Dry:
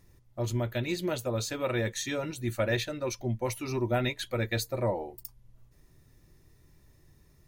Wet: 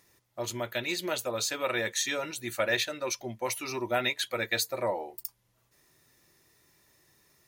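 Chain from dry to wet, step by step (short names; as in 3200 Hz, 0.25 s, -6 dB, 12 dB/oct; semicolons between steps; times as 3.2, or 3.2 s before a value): HPF 940 Hz 6 dB/oct; gain +5.5 dB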